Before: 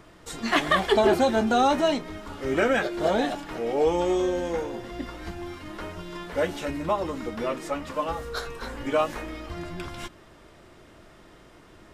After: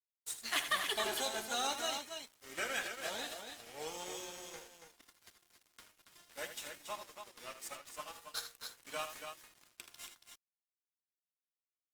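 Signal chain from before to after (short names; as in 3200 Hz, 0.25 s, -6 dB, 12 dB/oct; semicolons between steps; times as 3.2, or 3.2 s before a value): pre-emphasis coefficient 0.97; crossover distortion -48.5 dBFS; on a send: loudspeakers at several distances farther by 27 m -10 dB, 96 m -7 dB; on the sum: gain +3 dB; Opus 32 kbps 48000 Hz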